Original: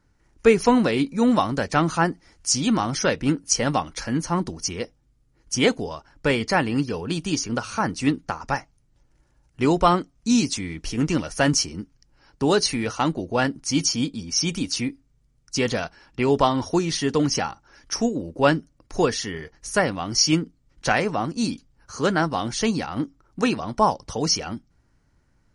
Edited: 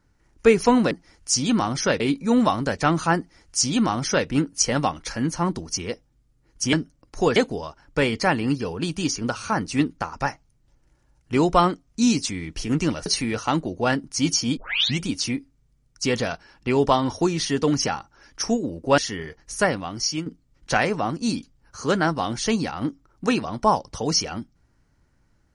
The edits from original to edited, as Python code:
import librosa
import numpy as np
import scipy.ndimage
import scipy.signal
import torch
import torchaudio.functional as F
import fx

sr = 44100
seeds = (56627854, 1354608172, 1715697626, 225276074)

y = fx.edit(x, sr, fx.duplicate(start_s=2.09, length_s=1.09, to_s=0.91),
    fx.cut(start_s=11.34, length_s=1.24),
    fx.tape_start(start_s=14.09, length_s=0.43),
    fx.move(start_s=18.5, length_s=0.63, to_s=5.64),
    fx.fade_out_to(start_s=19.79, length_s=0.62, floor_db=-11.0), tone=tone)